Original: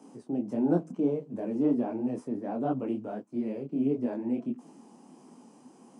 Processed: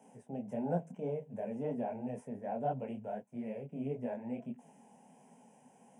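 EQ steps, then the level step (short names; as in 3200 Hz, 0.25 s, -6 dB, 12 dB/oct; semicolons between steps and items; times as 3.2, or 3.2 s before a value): fixed phaser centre 1200 Hz, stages 6; -1.0 dB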